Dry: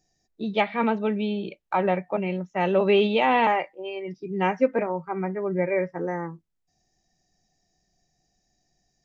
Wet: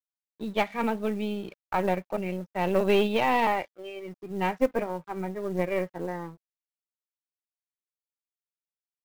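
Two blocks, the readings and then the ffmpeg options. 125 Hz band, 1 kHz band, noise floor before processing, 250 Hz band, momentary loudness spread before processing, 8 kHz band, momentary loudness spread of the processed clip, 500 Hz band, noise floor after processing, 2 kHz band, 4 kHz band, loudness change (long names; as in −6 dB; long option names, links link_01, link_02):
−3.0 dB, −3.5 dB, −74 dBFS, −3.5 dB, 13 LU, can't be measured, 15 LU, −3.5 dB, below −85 dBFS, −3.5 dB, −3.5 dB, −3.5 dB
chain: -af "aeval=exprs='0.422*(cos(1*acos(clip(val(0)/0.422,-1,1)))-cos(1*PI/2))+0.0473*(cos(2*acos(clip(val(0)/0.422,-1,1)))-cos(2*PI/2))+0.0211*(cos(6*acos(clip(val(0)/0.422,-1,1)))-cos(6*PI/2))+0.0106*(cos(7*acos(clip(val(0)/0.422,-1,1)))-cos(7*PI/2))':channel_layout=same,aeval=exprs='sgn(val(0))*max(abs(val(0))-0.00316,0)':channel_layout=same,acrusher=bits=7:mode=log:mix=0:aa=0.000001,volume=-3dB"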